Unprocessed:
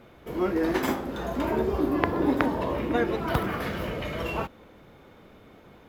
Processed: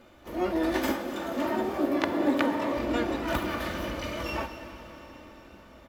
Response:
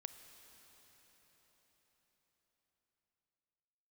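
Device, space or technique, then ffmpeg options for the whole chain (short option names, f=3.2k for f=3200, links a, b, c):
shimmer-style reverb: -filter_complex "[0:a]asplit=3[a][b][c];[a]afade=t=out:st=0.92:d=0.02[d];[b]highpass=f=110:w=0.5412,highpass=f=110:w=1.3066,afade=t=in:st=0.92:d=0.02,afade=t=out:st=2.76:d=0.02[e];[c]afade=t=in:st=2.76:d=0.02[f];[d][e][f]amix=inputs=3:normalize=0,highshelf=f=2.2k:g=2.5,aecho=1:1:3.4:0.62,aecho=1:1:246:0.1,asplit=2[g][h];[h]asetrate=88200,aresample=44100,atempo=0.5,volume=-8dB[i];[g][i]amix=inputs=2:normalize=0[j];[1:a]atrim=start_sample=2205[k];[j][k]afir=irnorm=-1:irlink=0"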